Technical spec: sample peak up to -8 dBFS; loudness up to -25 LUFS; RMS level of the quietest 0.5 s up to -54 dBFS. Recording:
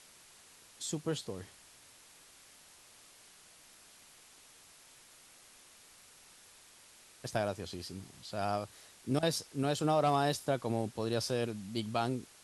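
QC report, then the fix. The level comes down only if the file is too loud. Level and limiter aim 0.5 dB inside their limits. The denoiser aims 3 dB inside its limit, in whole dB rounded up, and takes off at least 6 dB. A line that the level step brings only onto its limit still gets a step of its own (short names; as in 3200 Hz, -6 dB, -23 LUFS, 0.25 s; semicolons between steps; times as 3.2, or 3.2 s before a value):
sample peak -18.0 dBFS: OK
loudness -35.0 LUFS: OK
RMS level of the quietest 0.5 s -59 dBFS: OK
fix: none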